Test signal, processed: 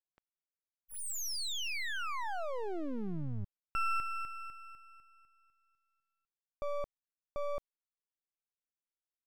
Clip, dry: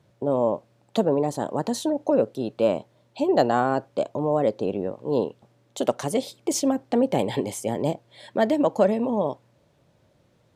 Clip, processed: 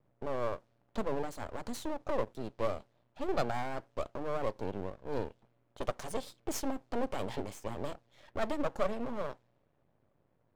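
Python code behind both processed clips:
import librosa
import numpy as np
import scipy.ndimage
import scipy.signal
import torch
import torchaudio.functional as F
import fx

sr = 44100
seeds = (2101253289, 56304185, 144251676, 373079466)

y = fx.env_lowpass(x, sr, base_hz=1600.0, full_db=-21.5)
y = np.maximum(y, 0.0)
y = F.gain(torch.from_numpy(y), -7.0).numpy()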